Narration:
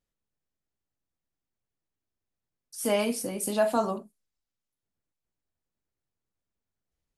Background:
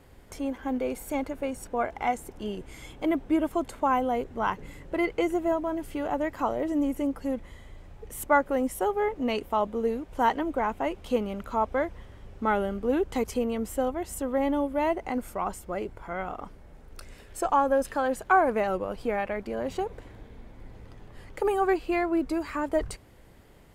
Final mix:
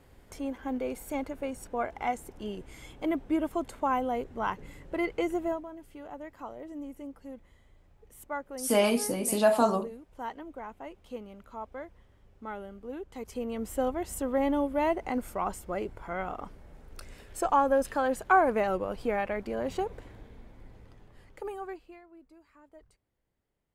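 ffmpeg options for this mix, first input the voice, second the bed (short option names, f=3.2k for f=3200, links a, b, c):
-filter_complex "[0:a]adelay=5850,volume=2dB[a];[1:a]volume=9.5dB,afade=t=out:st=5.44:d=0.24:silence=0.298538,afade=t=in:st=13.16:d=0.72:silence=0.223872,afade=t=out:st=19.83:d=2.18:silence=0.0446684[b];[a][b]amix=inputs=2:normalize=0"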